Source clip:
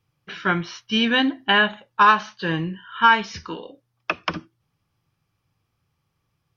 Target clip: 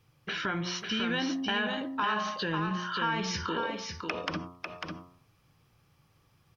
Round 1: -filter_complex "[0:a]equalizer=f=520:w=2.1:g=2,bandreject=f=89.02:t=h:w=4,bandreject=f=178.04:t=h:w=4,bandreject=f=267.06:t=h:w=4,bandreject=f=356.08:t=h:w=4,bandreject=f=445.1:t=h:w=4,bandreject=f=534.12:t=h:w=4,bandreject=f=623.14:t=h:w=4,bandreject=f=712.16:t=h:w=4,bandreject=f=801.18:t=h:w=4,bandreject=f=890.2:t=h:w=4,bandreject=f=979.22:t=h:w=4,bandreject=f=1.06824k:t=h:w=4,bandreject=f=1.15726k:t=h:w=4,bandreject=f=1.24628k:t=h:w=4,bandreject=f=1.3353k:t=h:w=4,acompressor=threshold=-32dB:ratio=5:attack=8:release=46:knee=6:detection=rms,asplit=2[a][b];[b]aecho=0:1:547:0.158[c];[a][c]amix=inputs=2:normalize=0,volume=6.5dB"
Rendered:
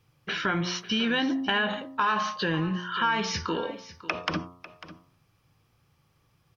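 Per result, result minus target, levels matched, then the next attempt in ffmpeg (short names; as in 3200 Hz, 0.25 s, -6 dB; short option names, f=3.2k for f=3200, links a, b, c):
echo-to-direct -11 dB; compressor: peak gain reduction -5 dB
-filter_complex "[0:a]equalizer=f=520:w=2.1:g=2,bandreject=f=89.02:t=h:w=4,bandreject=f=178.04:t=h:w=4,bandreject=f=267.06:t=h:w=4,bandreject=f=356.08:t=h:w=4,bandreject=f=445.1:t=h:w=4,bandreject=f=534.12:t=h:w=4,bandreject=f=623.14:t=h:w=4,bandreject=f=712.16:t=h:w=4,bandreject=f=801.18:t=h:w=4,bandreject=f=890.2:t=h:w=4,bandreject=f=979.22:t=h:w=4,bandreject=f=1.06824k:t=h:w=4,bandreject=f=1.15726k:t=h:w=4,bandreject=f=1.24628k:t=h:w=4,bandreject=f=1.3353k:t=h:w=4,acompressor=threshold=-32dB:ratio=5:attack=8:release=46:knee=6:detection=rms,asplit=2[a][b];[b]aecho=0:1:547:0.562[c];[a][c]amix=inputs=2:normalize=0,volume=6.5dB"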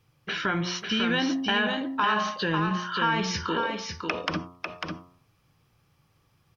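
compressor: peak gain reduction -5 dB
-filter_complex "[0:a]equalizer=f=520:w=2.1:g=2,bandreject=f=89.02:t=h:w=4,bandreject=f=178.04:t=h:w=4,bandreject=f=267.06:t=h:w=4,bandreject=f=356.08:t=h:w=4,bandreject=f=445.1:t=h:w=4,bandreject=f=534.12:t=h:w=4,bandreject=f=623.14:t=h:w=4,bandreject=f=712.16:t=h:w=4,bandreject=f=801.18:t=h:w=4,bandreject=f=890.2:t=h:w=4,bandreject=f=979.22:t=h:w=4,bandreject=f=1.06824k:t=h:w=4,bandreject=f=1.15726k:t=h:w=4,bandreject=f=1.24628k:t=h:w=4,bandreject=f=1.3353k:t=h:w=4,acompressor=threshold=-38.5dB:ratio=5:attack=8:release=46:knee=6:detection=rms,asplit=2[a][b];[b]aecho=0:1:547:0.562[c];[a][c]amix=inputs=2:normalize=0,volume=6.5dB"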